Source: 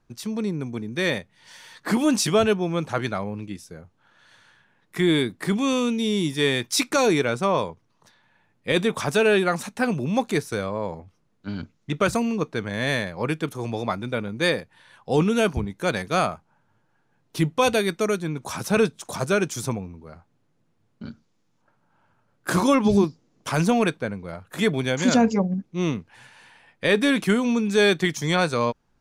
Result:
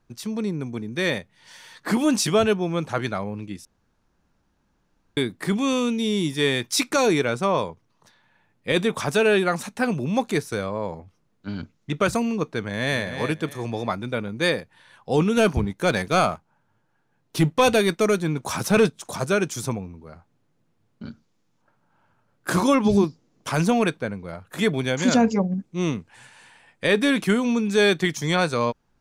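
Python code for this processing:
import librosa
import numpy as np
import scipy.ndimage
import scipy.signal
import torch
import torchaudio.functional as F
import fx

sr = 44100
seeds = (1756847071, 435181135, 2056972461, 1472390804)

y = fx.echo_throw(x, sr, start_s=12.6, length_s=0.41, ms=310, feedback_pct=25, wet_db=-8.5)
y = fx.leveller(y, sr, passes=1, at=(15.37, 18.97))
y = fx.peak_eq(y, sr, hz=8000.0, db=8.5, octaves=0.46, at=(25.59, 26.87))
y = fx.edit(y, sr, fx.room_tone_fill(start_s=3.65, length_s=1.52), tone=tone)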